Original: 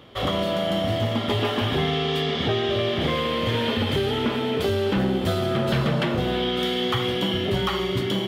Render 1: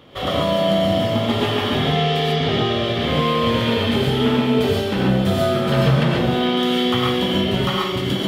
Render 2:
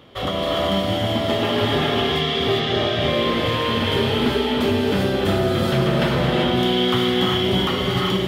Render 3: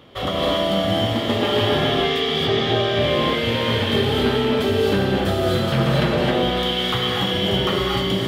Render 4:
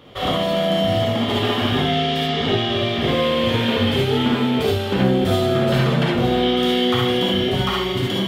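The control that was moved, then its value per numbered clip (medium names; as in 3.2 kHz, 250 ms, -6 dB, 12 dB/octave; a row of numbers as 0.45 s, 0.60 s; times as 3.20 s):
gated-style reverb, gate: 160 ms, 420 ms, 290 ms, 90 ms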